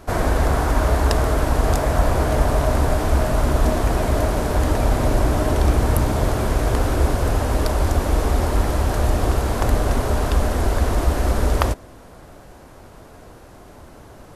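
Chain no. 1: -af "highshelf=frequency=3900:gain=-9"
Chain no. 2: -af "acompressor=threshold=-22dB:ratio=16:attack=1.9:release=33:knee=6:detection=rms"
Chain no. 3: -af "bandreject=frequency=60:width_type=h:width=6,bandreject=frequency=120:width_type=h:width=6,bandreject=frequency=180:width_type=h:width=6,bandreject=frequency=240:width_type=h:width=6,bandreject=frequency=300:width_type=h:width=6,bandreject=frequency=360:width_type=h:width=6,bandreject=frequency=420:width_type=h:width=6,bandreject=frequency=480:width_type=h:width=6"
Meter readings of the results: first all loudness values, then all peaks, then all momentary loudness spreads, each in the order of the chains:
−21.0, −28.5, −21.0 LKFS; −2.5, −12.0, −1.5 dBFS; 2, 16, 2 LU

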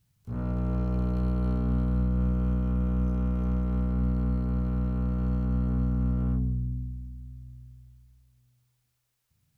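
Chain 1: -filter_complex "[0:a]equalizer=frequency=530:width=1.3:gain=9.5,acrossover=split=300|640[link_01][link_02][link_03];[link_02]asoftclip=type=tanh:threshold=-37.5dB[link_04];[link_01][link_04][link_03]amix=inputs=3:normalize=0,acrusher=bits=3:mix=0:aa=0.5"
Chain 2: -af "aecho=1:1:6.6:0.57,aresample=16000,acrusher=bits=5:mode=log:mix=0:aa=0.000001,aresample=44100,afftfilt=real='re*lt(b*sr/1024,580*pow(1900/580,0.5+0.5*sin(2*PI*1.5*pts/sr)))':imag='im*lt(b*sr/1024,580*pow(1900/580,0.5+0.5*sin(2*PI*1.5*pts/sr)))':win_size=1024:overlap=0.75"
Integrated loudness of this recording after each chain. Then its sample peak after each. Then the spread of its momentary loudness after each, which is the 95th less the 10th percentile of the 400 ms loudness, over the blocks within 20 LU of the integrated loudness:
−28.0, −28.5 LKFS; −17.0, −18.5 dBFS; 4, 11 LU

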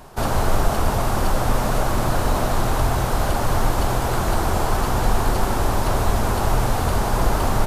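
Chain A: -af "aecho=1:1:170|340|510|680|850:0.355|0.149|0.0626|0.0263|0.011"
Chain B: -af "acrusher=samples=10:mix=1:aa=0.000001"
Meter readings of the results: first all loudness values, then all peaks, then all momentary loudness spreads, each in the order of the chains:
−21.5, −22.0 LKFS; −4.5, −5.5 dBFS; 1, 1 LU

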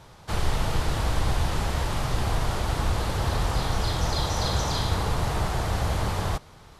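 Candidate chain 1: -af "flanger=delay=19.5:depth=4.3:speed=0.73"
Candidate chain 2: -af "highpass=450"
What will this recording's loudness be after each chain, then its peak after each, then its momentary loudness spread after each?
−30.5, −31.5 LKFS; −15.5, −16.0 dBFS; 3, 4 LU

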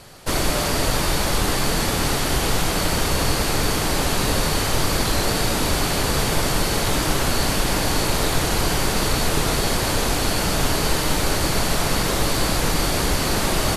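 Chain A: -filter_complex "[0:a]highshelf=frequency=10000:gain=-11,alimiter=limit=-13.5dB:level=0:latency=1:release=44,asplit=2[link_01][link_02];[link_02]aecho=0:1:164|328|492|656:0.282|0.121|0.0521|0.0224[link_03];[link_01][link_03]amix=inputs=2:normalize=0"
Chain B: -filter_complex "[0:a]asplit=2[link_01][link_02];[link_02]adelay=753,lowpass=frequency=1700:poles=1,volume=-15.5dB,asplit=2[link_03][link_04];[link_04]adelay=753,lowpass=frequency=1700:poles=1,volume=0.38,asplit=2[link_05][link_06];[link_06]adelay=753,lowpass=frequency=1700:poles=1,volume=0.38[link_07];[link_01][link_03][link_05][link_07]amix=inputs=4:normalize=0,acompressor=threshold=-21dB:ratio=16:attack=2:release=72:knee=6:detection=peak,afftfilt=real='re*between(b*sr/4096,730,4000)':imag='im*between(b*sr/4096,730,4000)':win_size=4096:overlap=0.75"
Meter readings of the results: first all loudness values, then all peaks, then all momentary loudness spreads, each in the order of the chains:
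−23.5, −31.5 LKFS; −11.0, −19.0 dBFS; 1, 1 LU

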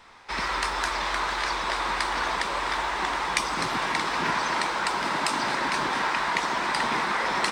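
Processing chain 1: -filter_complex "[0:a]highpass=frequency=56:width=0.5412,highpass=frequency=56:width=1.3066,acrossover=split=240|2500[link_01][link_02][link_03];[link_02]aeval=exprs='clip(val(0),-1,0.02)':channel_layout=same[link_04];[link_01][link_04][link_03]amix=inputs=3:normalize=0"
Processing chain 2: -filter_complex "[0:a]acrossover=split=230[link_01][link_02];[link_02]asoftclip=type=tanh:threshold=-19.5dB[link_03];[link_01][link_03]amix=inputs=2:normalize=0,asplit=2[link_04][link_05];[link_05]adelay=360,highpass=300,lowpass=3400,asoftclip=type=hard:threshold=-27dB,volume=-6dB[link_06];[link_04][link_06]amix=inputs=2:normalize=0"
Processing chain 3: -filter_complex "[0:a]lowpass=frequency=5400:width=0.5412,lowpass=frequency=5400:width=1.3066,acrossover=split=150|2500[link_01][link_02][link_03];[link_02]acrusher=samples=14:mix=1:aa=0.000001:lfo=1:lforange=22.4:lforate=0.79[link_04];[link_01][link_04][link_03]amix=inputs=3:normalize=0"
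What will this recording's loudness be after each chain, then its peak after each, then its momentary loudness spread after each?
−28.0, −27.0, −27.0 LKFS; −8.5, −17.0, −7.0 dBFS; 2, 2, 2 LU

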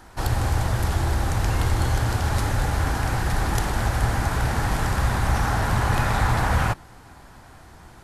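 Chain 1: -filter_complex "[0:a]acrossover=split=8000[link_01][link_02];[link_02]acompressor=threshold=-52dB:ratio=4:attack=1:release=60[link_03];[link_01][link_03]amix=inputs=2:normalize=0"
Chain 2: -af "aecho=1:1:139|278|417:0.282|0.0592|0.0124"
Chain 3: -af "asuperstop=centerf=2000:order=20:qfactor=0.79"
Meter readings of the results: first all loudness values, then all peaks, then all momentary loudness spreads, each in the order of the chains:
−24.0, −23.5, −24.5 LKFS; −8.5, −7.5, −8.5 dBFS; 3, 3, 2 LU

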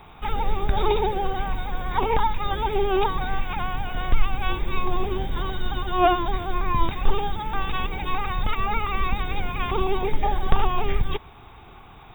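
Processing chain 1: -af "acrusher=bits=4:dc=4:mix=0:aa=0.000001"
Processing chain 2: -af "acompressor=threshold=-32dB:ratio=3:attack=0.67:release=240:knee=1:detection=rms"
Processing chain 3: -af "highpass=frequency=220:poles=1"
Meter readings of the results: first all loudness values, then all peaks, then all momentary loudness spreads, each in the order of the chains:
−24.0, −38.5, −28.0 LKFS; −4.5, −20.5, −6.5 dBFS; 7, 5, 8 LU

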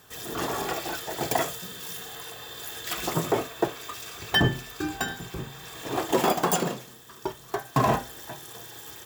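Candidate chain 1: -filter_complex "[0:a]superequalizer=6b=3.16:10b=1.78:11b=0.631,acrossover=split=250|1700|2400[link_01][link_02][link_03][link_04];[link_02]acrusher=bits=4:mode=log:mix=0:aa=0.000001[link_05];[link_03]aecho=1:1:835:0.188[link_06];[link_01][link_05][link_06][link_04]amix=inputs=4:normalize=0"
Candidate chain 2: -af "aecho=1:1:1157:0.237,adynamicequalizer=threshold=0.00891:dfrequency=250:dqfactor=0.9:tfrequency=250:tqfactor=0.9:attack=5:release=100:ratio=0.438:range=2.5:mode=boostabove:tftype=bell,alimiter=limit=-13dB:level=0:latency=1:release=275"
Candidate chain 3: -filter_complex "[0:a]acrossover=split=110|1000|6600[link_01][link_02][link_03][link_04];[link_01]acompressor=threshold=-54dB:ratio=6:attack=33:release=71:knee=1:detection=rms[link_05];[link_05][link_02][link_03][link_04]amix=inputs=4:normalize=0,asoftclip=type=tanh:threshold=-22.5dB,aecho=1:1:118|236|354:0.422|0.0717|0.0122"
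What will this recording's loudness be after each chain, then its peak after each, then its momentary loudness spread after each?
−26.0, −29.5, −31.5 LKFS; −5.0, −13.0, −19.5 dBFS; 16, 11, 11 LU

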